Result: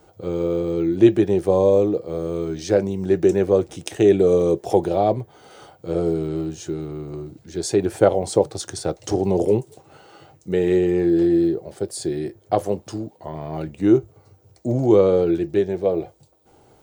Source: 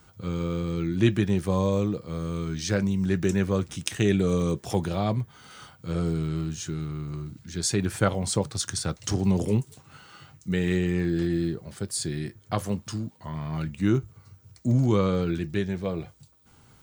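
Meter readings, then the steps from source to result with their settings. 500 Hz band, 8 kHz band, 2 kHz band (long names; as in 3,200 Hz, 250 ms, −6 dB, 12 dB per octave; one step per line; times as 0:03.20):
+12.0 dB, −2.0 dB, −2.0 dB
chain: flat-topped bell 510 Hz +14 dB
level −2 dB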